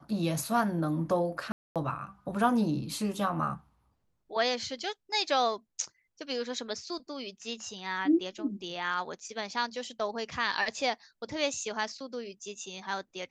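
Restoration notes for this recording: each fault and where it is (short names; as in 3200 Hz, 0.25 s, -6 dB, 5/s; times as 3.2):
1.52–1.76 gap 0.237 s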